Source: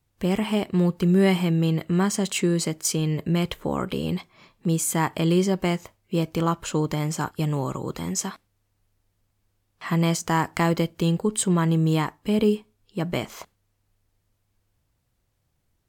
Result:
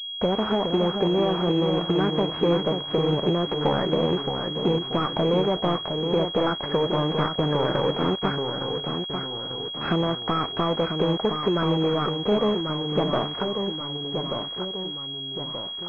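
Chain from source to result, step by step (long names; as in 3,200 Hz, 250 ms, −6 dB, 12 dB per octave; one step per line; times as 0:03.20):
gap after every zero crossing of 0.11 ms
in parallel at 0 dB: brickwall limiter −15 dBFS, peak gain reduction 7.5 dB
on the sum: downward compressor 20 to 1, threshold −23 dBFS, peak gain reduction 13.5 dB
mid-hump overdrive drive 21 dB, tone 1,000 Hz, clips at −10.5 dBFS
formants moved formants +5 semitones
bit-depth reduction 6 bits, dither none
delay with pitch and tempo change per echo 403 ms, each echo −1 semitone, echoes 3, each echo −6 dB
switching amplifier with a slow clock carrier 3,300 Hz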